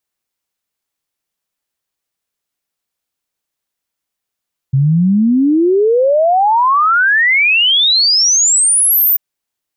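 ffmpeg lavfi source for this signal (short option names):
-f lavfi -i "aevalsrc='0.398*clip(min(t,4.44-t)/0.01,0,1)*sin(2*PI*130*4.44/log(15000/130)*(exp(log(15000/130)*t/4.44)-1))':d=4.44:s=44100"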